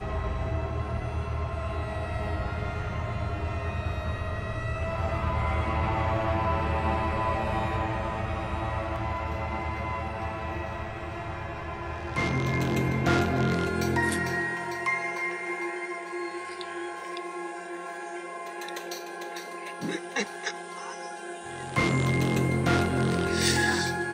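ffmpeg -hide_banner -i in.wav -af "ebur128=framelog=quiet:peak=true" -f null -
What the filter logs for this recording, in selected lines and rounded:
Integrated loudness:
  I:         -29.6 LUFS
  Threshold: -39.6 LUFS
Loudness range:
  LRA:         8.3 LU
  Threshold: -50.0 LUFS
  LRA low:   -35.1 LUFS
  LRA high:  -26.9 LUFS
True peak:
  Peak:       -9.5 dBFS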